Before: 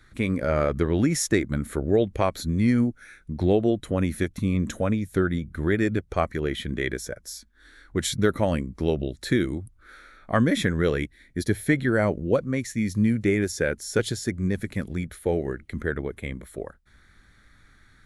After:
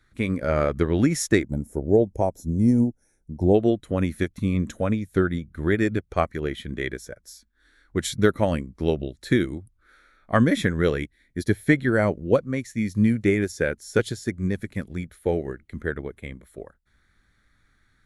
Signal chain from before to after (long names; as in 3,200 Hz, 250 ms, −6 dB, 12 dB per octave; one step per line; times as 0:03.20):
gain on a spectral selection 0:01.44–0:03.55, 970–5,000 Hz −20 dB
expander for the loud parts 1.5 to 1, over −40 dBFS
level +3.5 dB